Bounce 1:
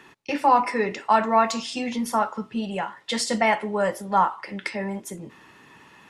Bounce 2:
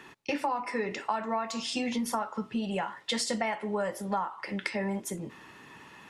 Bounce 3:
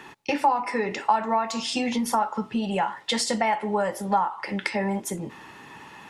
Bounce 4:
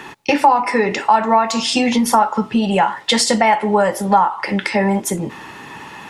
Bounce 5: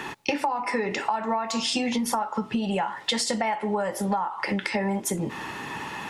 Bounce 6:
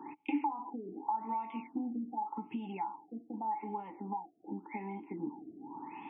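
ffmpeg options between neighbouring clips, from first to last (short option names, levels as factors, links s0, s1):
-af "acompressor=threshold=0.0447:ratio=12"
-af "equalizer=f=840:t=o:w=0.25:g=7,volume=1.78"
-af "alimiter=level_in=3.55:limit=0.891:release=50:level=0:latency=1,volume=0.891"
-af "acompressor=threshold=0.0631:ratio=6"
-filter_complex "[0:a]asplit=3[s0][s1][s2];[s0]bandpass=f=300:t=q:w=8,volume=1[s3];[s1]bandpass=f=870:t=q:w=8,volume=0.501[s4];[s2]bandpass=f=2240:t=q:w=8,volume=0.355[s5];[s3][s4][s5]amix=inputs=3:normalize=0,afftfilt=real='re*lt(b*sr/1024,710*pow(3700/710,0.5+0.5*sin(2*PI*0.86*pts/sr)))':imag='im*lt(b*sr/1024,710*pow(3700/710,0.5+0.5*sin(2*PI*0.86*pts/sr)))':win_size=1024:overlap=0.75"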